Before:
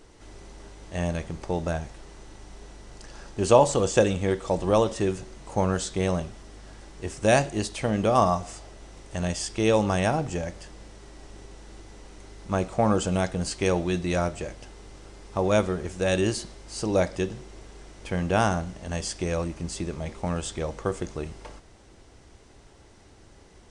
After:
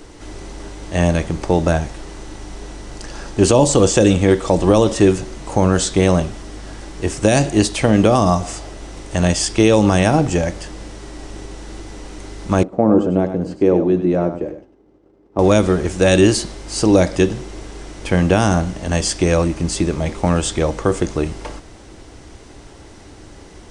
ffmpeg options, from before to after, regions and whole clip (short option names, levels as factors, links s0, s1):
-filter_complex "[0:a]asettb=1/sr,asplit=3[s0][s1][s2];[s0]atrim=end=12.634[s3];[s1]atrim=start=12.63:end=15.39,asetpts=PTS-STARTPTS,afade=t=in:d=0.004:c=qsin,afade=t=out:st=2.756:d=0.004:c=qsin,agate=range=0.0224:threshold=0.0158:ratio=3:release=100:detection=peak,bandpass=f=330:t=q:w=1.2,aecho=1:1:98:0.355,atrim=end_sample=121716[s4];[s2]atrim=start=15.386[s5];[s3][s4]acrossfade=d=0.004:c1=hsin:c2=qsin[s6];[s6][s5]acrossfade=d=0.004:c1=qsin:c2=hsin,equalizer=f=300:w=5.6:g=5.5,acrossover=split=430|3000[s7][s8][s9];[s8]acompressor=threshold=0.0562:ratio=6[s10];[s7][s10][s9]amix=inputs=3:normalize=0,alimiter=level_in=4.47:limit=0.891:release=50:level=0:latency=1,volume=0.891"